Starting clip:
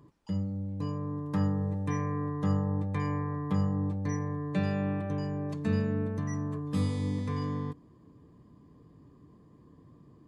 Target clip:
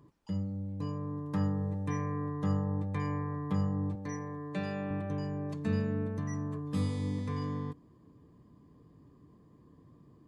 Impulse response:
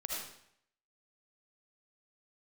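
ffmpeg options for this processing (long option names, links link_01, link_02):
-filter_complex "[0:a]asettb=1/sr,asplit=3[link_01][link_02][link_03];[link_01]atrim=end=3.954[link_04];[link_02]atrim=start=3.95:end=4.91,asetpts=PTS-STARTPTS,afade=type=in:duration=0.004:curve=qsin,afade=type=out:start_time=0.956:duration=0.004:curve=qsin,highpass=frequency=240:poles=1[link_05];[link_03]atrim=start=4.906[link_06];[link_04][link_05]acrossfade=duration=0.004:curve1=hsin:curve2=qsin[link_07];[link_07][link_06]acrossfade=duration=0.004:curve1=qsin:curve2=hsin,volume=-2.5dB"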